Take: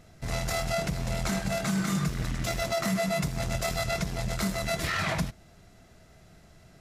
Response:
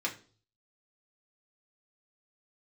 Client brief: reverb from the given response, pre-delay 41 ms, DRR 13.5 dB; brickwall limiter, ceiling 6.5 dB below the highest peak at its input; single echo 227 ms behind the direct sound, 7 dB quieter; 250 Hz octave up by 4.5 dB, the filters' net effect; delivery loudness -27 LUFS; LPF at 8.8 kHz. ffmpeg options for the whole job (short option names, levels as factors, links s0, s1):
-filter_complex "[0:a]lowpass=8800,equalizer=f=250:t=o:g=7,alimiter=limit=0.0841:level=0:latency=1,aecho=1:1:227:0.447,asplit=2[s0][s1];[1:a]atrim=start_sample=2205,adelay=41[s2];[s1][s2]afir=irnorm=-1:irlink=0,volume=0.119[s3];[s0][s3]amix=inputs=2:normalize=0,volume=1.5"